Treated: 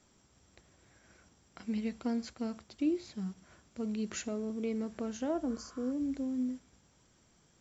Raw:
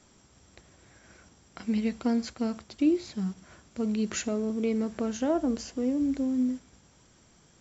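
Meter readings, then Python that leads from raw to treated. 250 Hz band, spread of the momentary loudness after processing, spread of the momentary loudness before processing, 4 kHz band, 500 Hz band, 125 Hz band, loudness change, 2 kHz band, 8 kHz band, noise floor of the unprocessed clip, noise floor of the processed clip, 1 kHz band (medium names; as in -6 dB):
-7.0 dB, 8 LU, 8 LU, -7.0 dB, -7.0 dB, -7.0 dB, -7.0 dB, -7.0 dB, no reading, -61 dBFS, -68 dBFS, -7.0 dB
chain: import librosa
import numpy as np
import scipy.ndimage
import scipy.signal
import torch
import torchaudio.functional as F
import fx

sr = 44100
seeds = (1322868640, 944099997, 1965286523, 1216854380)

y = fx.spec_repair(x, sr, seeds[0], start_s=5.51, length_s=0.38, low_hz=990.0, high_hz=4200.0, source='before')
y = y * 10.0 ** (-7.0 / 20.0)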